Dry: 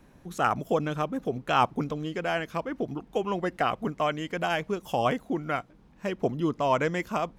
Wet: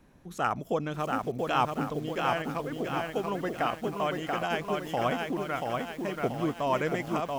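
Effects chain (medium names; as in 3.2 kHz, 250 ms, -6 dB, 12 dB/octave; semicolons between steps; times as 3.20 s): bit-crushed delay 683 ms, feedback 55%, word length 8-bit, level -3 dB; trim -3.5 dB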